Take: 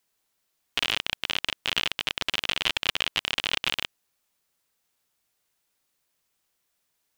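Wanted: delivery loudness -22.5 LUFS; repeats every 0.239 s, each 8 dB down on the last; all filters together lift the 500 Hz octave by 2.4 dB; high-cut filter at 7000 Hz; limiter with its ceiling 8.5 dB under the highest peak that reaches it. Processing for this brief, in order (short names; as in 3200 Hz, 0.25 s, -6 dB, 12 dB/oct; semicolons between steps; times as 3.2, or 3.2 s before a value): LPF 7000 Hz; bell 500 Hz +3 dB; limiter -10.5 dBFS; feedback echo 0.239 s, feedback 40%, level -8 dB; gain +7 dB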